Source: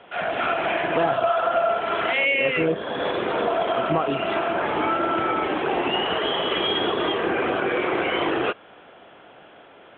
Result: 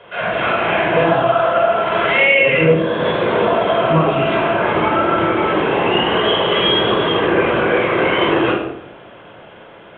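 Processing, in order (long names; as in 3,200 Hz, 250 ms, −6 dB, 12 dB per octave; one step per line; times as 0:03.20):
rectangular room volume 2,000 cubic metres, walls furnished, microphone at 5.2 metres
level +2.5 dB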